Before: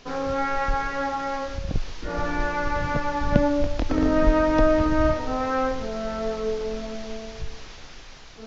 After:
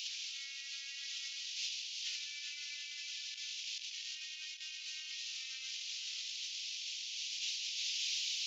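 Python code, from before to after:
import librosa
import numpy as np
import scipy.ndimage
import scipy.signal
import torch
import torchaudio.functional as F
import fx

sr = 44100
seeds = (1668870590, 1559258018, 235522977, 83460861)

y = scipy.signal.sosfilt(scipy.signal.butter(8, 2600.0, 'highpass', fs=sr, output='sos'), x)
y = fx.over_compress(y, sr, threshold_db=-51.0, ratio=-0.5)
y = y + 10.0 ** (-10.0 / 20.0) * np.pad(y, (int(373 * sr / 1000.0), 0))[:len(y)]
y = y * librosa.db_to_amplitude(9.0)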